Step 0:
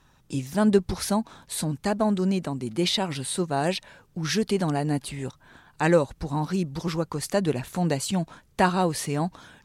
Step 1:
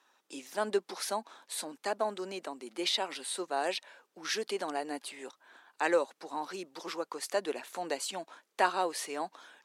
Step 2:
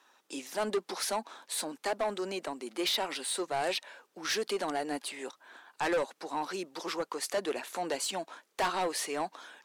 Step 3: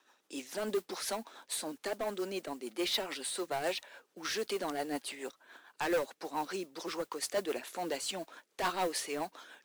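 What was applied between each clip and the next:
Bessel high-pass 490 Hz, order 6; treble shelf 7.5 kHz -4.5 dB; trim -4 dB
saturation -29.5 dBFS, distortion -8 dB; trim +4.5 dB
rotary cabinet horn 7 Hz; modulation noise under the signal 20 dB

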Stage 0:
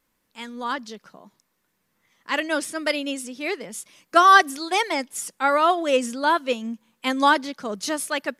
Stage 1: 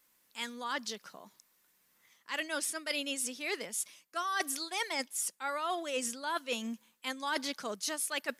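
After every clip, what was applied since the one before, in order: tilt EQ +2.5 dB/octave; reverse; compression 10:1, threshold -29 dBFS, peak gain reduction 21 dB; reverse; trim -2.5 dB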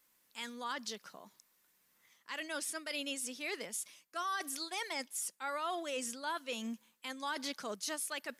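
peak limiter -26.5 dBFS, peak gain reduction 8 dB; trim -2 dB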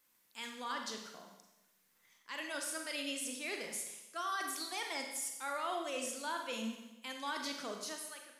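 fade out at the end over 0.75 s; Schroeder reverb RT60 0.95 s, combs from 32 ms, DRR 3 dB; trim -2 dB

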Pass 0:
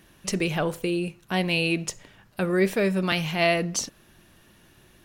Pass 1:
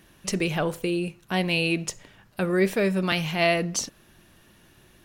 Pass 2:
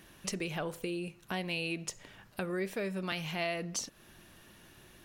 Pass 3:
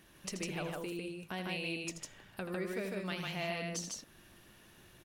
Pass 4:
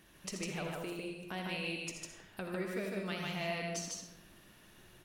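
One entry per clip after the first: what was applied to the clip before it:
no audible change
compression 2.5:1, threshold -37 dBFS, peak gain reduction 13 dB; bass shelf 330 Hz -3 dB
loudspeakers at several distances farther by 28 m -9 dB, 52 m -2 dB; trim -5 dB
algorithmic reverb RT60 1 s, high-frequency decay 0.7×, pre-delay 20 ms, DRR 5.5 dB; trim -1 dB

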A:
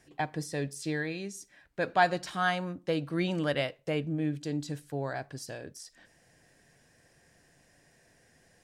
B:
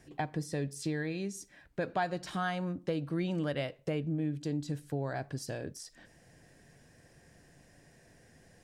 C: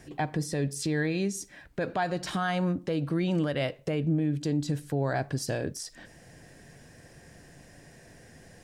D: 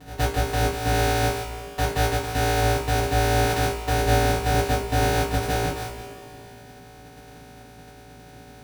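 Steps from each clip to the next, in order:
bass shelf 480 Hz +7 dB; compression 2.5:1, threshold -33 dBFS, peak gain reduction 11 dB
peak limiter -27 dBFS, peak gain reduction 7.5 dB; trim +8 dB
sorted samples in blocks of 256 samples; ring modulator 230 Hz; two-slope reverb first 0.25 s, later 2.7 s, from -19 dB, DRR -10 dB

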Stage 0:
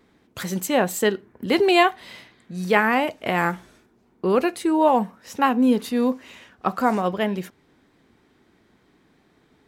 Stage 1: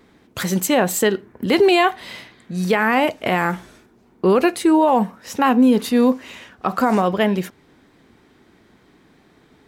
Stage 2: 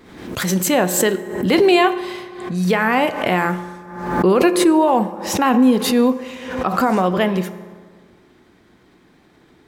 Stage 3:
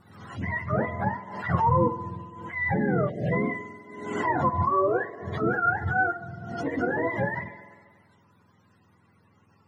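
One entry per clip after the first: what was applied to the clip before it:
peak limiter -13.5 dBFS, peak gain reduction 10.5 dB; trim +6.5 dB
on a send at -11 dB: reverberation RT60 1.7 s, pre-delay 3 ms; on the sum: swell ahead of each attack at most 64 dB/s
spectrum inverted on a logarithmic axis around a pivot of 600 Hz; spectral selection erased 3.09–3.33 s, 770–1600 Hz; attacks held to a fixed rise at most 160 dB/s; trim -7.5 dB

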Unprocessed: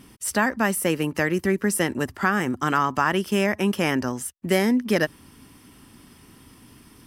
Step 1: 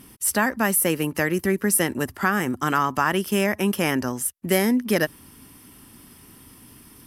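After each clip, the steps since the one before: peaking EQ 12 kHz +10.5 dB 0.66 oct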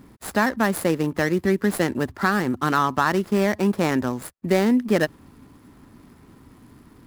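median filter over 15 samples; trim +2 dB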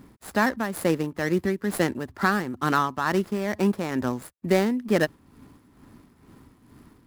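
tremolo 2.2 Hz, depth 59%; trim -1 dB

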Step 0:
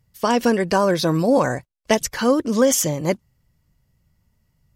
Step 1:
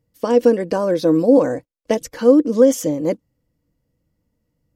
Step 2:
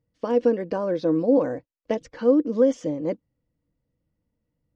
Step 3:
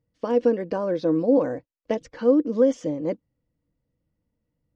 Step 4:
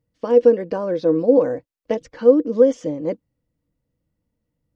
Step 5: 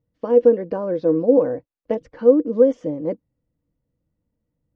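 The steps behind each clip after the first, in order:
small resonant body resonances 300/480 Hz, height 18 dB, ringing for 50 ms; trim -8.5 dB
Gaussian low-pass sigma 1.8 samples; trim -6.5 dB
no audible change
dynamic bell 480 Hz, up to +7 dB, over -32 dBFS, Q 6.4; trim +1.5 dB
low-pass 1.2 kHz 6 dB/octave

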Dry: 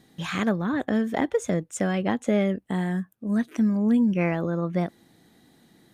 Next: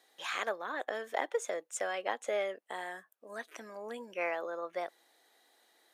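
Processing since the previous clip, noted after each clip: high-pass 500 Hz 24 dB/octave; trim -4.5 dB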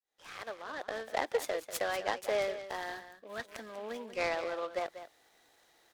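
fade-in on the opening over 1.34 s; delay 192 ms -12 dB; delay time shaken by noise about 2.1 kHz, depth 0.033 ms; trim +1.5 dB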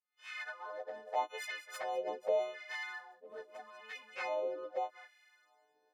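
partials quantised in pitch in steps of 3 st; LFO band-pass sine 0.82 Hz 420–2200 Hz; touch-sensitive flanger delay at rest 7.2 ms, full sweep at -34.5 dBFS; trim +3.5 dB

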